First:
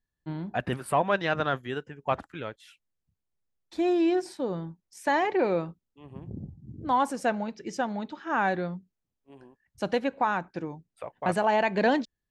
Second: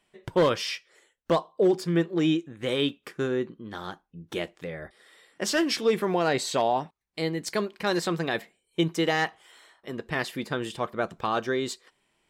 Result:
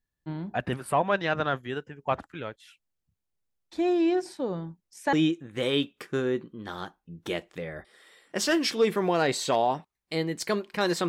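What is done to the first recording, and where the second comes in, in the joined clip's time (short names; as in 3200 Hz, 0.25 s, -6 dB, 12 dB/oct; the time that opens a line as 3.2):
first
5.13 switch to second from 2.19 s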